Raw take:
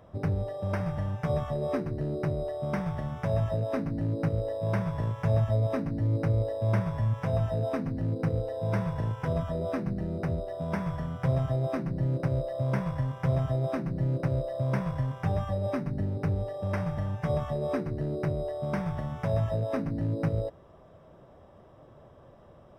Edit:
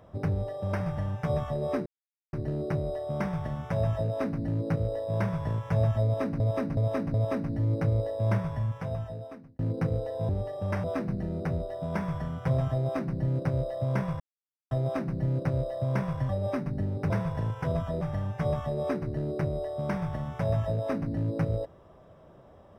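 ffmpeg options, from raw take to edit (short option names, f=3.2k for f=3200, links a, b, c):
-filter_complex "[0:a]asplit=13[a][b][c][d][e][f][g][h][i][j][k][l][m];[a]atrim=end=1.86,asetpts=PTS-STARTPTS,afade=t=out:st=1.856:d=0.004:c=hsin,apad=pad_dur=0.47[n];[b]atrim=start=1.86:end=5.932,asetpts=PTS-STARTPTS,afade=t=in:d=0.004:c=hsin[o];[c]atrim=start=5.558:end=5.932[p];[d]atrim=start=5.558:end=5.932[q];[e]atrim=start=5.558:end=8.01,asetpts=PTS-STARTPTS,afade=t=out:st=1.182:d=1.27[r];[f]atrim=start=8.01:end=8.712,asetpts=PTS-STARTPTS,afade=t=in:d=0.004:c=hsin[s];[g]atrim=start=16.298:end=16.852[t];[h]atrim=start=9.618:end=12.98,asetpts=PTS-STARTPTS,afade=t=out:st=3.358:d=0.004:c=hsin[u];[i]atrim=start=12.98:end=13.49,asetpts=PTS-STARTPTS,volume=0[v];[j]atrim=start=13.49:end=15.072,asetpts=PTS-STARTPTS,afade=t=in:d=0.004:c=hsin[w];[k]atrim=start=15.488:end=16.302[x];[l]atrim=start=8.708:end=9.622[y];[m]atrim=start=16.848[z];[n][o]concat=n=2:v=0:a=1[aa];[aa][p]acrossfade=d=0.004:c1=hsin:c2=hsin[ab];[ab][q]acrossfade=d=0.004:c1=hsin:c2=hsin[ac];[r][s]concat=n=2:v=0:a=1[ad];[ac][ad]acrossfade=d=0.004:c1=hsin:c2=hsin[ae];[ae][t]acrossfade=d=0.004:c1=hsin:c2=hsin[af];[u][v][w]concat=n=3:v=0:a=1[ag];[af][ag]acrossfade=d=0.004:c1=hsin:c2=hsin[ah];[ah][x]acrossfade=d=0.004:c1=hsin:c2=hsin[ai];[ai][y]acrossfade=d=0.004:c1=hsin:c2=hsin[aj];[aj][z]acrossfade=d=0.004:c1=hsin:c2=hsin"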